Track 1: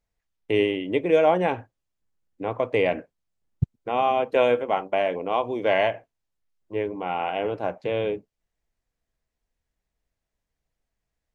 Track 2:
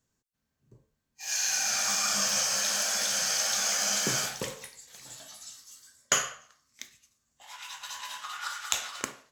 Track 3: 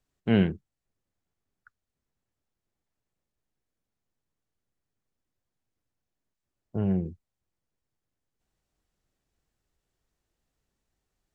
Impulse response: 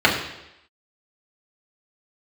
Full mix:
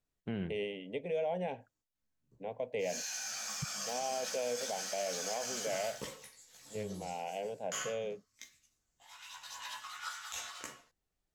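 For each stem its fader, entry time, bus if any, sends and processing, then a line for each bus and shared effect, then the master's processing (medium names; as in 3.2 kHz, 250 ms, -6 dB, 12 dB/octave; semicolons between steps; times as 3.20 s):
-10.5 dB, 0.00 s, no send, static phaser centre 330 Hz, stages 6
0.0 dB, 1.60 s, no send, gain riding within 4 dB 0.5 s; chorus voices 4, 1.4 Hz, delay 16 ms, depth 3 ms; feedback comb 100 Hz, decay 0.22 s, harmonics odd, mix 70%
-6.5 dB, 0.00 s, no send, auto duck -12 dB, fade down 0.90 s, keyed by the first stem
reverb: none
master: peak limiter -27 dBFS, peak gain reduction 12 dB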